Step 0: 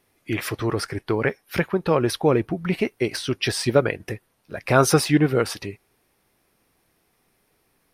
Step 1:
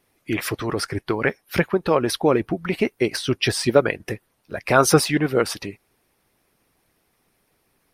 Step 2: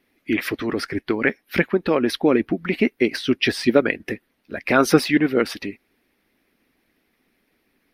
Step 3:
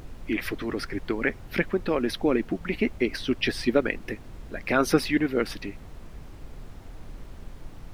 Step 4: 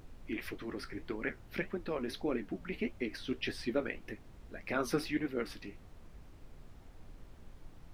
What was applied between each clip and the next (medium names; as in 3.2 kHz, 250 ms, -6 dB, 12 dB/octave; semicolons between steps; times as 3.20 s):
harmonic-percussive split percussive +8 dB; trim -5 dB
ten-band graphic EQ 125 Hz -7 dB, 250 Hz +10 dB, 1 kHz -4 dB, 2 kHz +7 dB, 4 kHz +3 dB, 8 kHz -9 dB; trim -2.5 dB
added noise brown -33 dBFS; trim -6 dB
flange 1.7 Hz, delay 8.9 ms, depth 9.8 ms, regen -56%; trim -7 dB